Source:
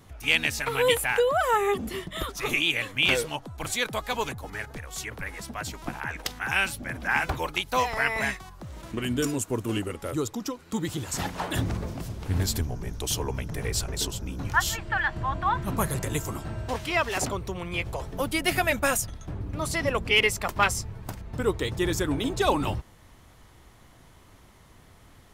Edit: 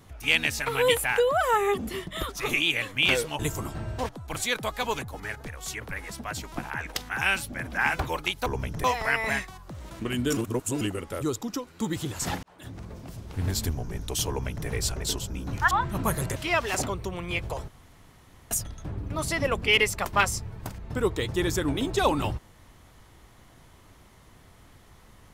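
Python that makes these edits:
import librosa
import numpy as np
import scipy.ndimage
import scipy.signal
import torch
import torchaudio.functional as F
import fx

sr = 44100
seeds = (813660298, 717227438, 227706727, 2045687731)

y = fx.edit(x, sr, fx.reverse_span(start_s=9.29, length_s=0.44),
    fx.fade_in_span(start_s=11.35, length_s=1.34),
    fx.duplicate(start_s=13.21, length_s=0.38, to_s=7.76),
    fx.cut(start_s=14.63, length_s=0.81),
    fx.move(start_s=16.09, length_s=0.7, to_s=3.39),
    fx.room_tone_fill(start_s=18.11, length_s=0.83), tone=tone)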